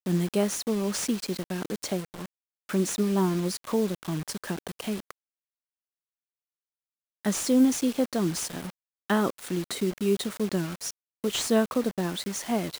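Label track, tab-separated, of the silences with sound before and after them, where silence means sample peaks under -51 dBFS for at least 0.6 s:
5.110000	7.250000	silence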